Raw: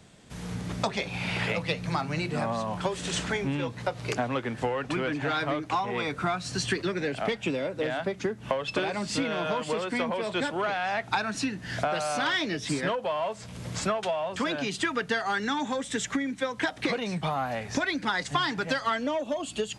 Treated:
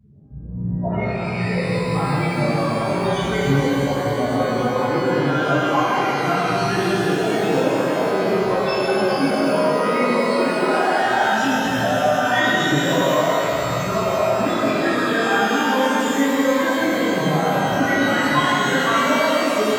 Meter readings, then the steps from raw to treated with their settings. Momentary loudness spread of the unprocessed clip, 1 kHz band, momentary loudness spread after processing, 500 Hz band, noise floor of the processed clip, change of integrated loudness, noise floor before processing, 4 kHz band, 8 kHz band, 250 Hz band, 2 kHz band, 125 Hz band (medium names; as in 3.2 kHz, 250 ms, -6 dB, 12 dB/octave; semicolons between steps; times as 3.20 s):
4 LU, +11.0 dB, 4 LU, +11.5 dB, -24 dBFS, +10.5 dB, -44 dBFS, +7.0 dB, +6.0 dB, +11.5 dB, +9.5 dB, +11.0 dB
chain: loudest bins only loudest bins 8; pitch-shifted reverb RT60 3.8 s, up +12 st, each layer -8 dB, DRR -11.5 dB